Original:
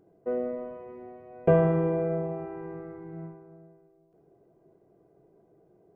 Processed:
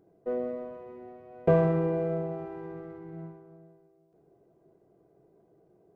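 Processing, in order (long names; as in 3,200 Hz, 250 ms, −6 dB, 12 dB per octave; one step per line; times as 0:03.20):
windowed peak hold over 3 samples
level −1.5 dB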